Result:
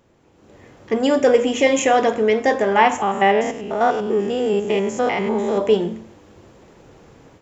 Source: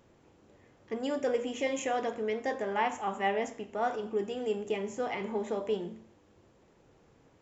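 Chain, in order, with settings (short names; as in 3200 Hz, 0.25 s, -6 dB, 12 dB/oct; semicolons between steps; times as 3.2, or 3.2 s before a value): 3.02–5.58 stepped spectrum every 0.1 s; AGC gain up to 12 dB; gain +3.5 dB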